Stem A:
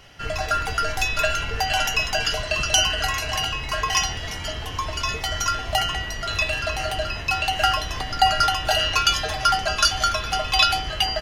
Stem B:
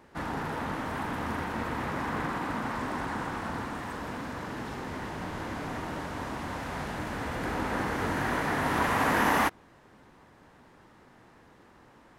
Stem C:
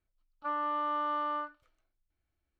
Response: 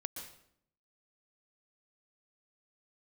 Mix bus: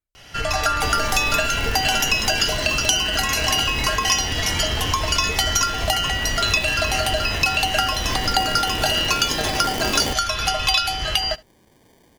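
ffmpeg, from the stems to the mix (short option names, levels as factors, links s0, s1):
-filter_complex "[0:a]acompressor=threshold=0.0355:ratio=6,adelay=150,volume=1,asplit=2[s0][s1];[s1]volume=0.0668[s2];[1:a]acrusher=samples=33:mix=1:aa=0.000001,adelay=650,volume=0.316[s3];[2:a]volume=0.422[s4];[s2]aecho=0:1:71:1[s5];[s0][s3][s4][s5]amix=inputs=4:normalize=0,highshelf=f=3500:g=7,dynaudnorm=f=110:g=7:m=3.16"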